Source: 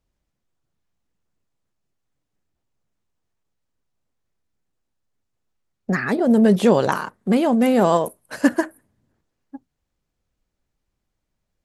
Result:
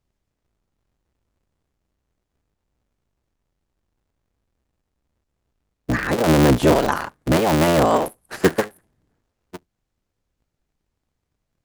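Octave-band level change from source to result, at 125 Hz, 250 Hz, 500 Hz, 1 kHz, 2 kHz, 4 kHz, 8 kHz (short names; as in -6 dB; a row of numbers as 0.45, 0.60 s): +5.5, -2.5, +0.5, +2.0, +2.0, +6.0, +6.5 dB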